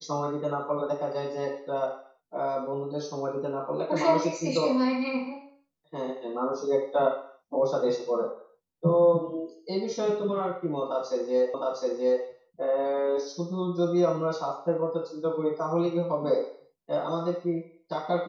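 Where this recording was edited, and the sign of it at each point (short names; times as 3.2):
11.54 repeat of the last 0.71 s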